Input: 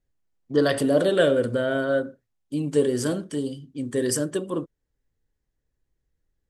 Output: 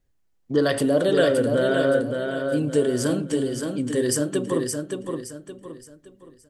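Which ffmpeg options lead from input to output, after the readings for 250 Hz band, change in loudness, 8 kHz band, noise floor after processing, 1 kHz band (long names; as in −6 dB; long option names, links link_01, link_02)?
+2.5 dB, +1.0 dB, +3.0 dB, −66 dBFS, +2.0 dB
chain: -af "acompressor=threshold=-32dB:ratio=1.5,aecho=1:1:569|1138|1707|2276:0.562|0.197|0.0689|0.0241,volume=5.5dB"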